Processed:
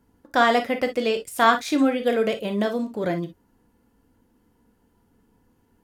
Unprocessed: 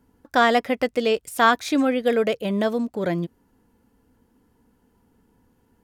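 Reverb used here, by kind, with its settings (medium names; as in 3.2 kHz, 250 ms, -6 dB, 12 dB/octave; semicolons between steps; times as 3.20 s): gated-style reverb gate 80 ms flat, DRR 6.5 dB; trim -1.5 dB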